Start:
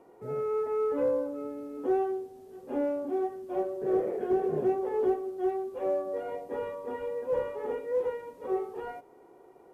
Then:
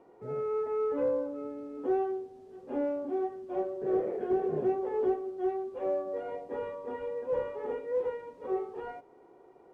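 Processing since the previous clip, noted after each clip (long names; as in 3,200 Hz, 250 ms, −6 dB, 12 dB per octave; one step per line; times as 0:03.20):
high-frequency loss of the air 71 metres
level −1.5 dB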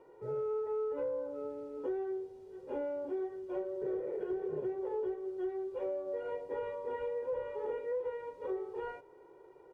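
comb filter 2.1 ms, depth 67%
downward compressor, threshold −31 dBFS, peak gain reduction 9.5 dB
level −2.5 dB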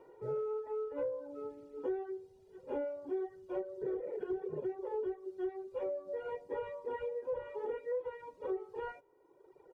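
reverb reduction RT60 1.6 s
level +1 dB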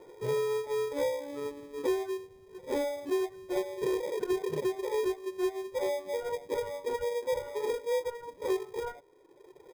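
low-pass filter 1,600 Hz 12 dB per octave
in parallel at −5 dB: decimation without filtering 31×
on the sum: level +4 dB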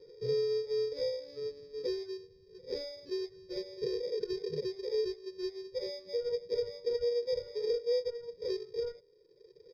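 drawn EQ curve 190 Hz 0 dB, 290 Hz −15 dB, 470 Hz +6 dB, 730 Hz −25 dB, 1,800 Hz −9 dB, 3,300 Hz −9 dB, 4,900 Hz +14 dB, 7,900 Hz −26 dB, 13,000 Hz −20 dB
level −3 dB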